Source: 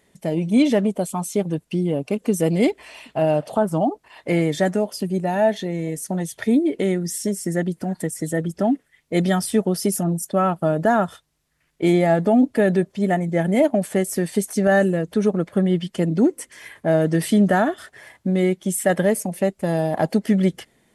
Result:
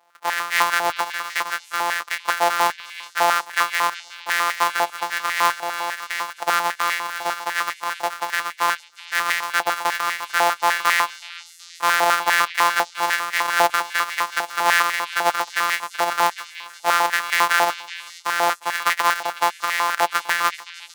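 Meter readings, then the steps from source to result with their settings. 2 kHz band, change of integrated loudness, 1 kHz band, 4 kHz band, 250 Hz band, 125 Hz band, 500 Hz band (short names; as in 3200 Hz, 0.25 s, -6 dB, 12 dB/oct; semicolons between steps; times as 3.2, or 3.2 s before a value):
+10.5 dB, 0.0 dB, +8.5 dB, +11.0 dB, -23.5 dB, under -25 dB, -9.5 dB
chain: sample sorter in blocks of 256 samples; delay with a stepping band-pass 0.373 s, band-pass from 3200 Hz, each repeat 0.7 oct, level -9 dB; stepped high-pass 10 Hz 800–1900 Hz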